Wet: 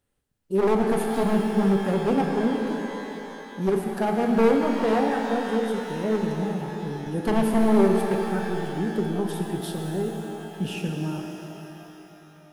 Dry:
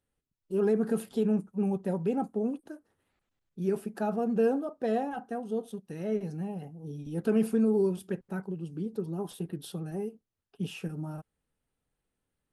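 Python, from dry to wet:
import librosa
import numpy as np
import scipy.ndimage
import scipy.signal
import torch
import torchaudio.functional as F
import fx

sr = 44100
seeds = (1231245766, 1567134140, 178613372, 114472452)

y = np.minimum(x, 2.0 * 10.0 ** (-24.0 / 20.0) - x)
y = fx.rev_shimmer(y, sr, seeds[0], rt60_s=3.3, semitones=12, shimmer_db=-8, drr_db=2.0)
y = y * 10.0 ** (6.0 / 20.0)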